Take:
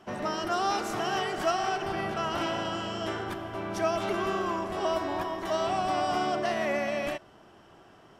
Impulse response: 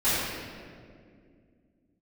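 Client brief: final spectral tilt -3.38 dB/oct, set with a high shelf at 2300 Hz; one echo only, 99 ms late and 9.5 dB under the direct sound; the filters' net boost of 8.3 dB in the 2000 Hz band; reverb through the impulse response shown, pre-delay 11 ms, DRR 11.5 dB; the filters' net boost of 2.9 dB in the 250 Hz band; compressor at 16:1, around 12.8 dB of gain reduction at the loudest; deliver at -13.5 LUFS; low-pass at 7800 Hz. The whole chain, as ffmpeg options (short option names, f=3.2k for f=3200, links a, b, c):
-filter_complex "[0:a]lowpass=7.8k,equalizer=f=250:t=o:g=4,equalizer=f=2k:t=o:g=7,highshelf=f=2.3k:g=7,acompressor=threshold=-32dB:ratio=16,aecho=1:1:99:0.335,asplit=2[a][b];[1:a]atrim=start_sample=2205,adelay=11[c];[b][c]afir=irnorm=-1:irlink=0,volume=-26.5dB[d];[a][d]amix=inputs=2:normalize=0,volume=21.5dB"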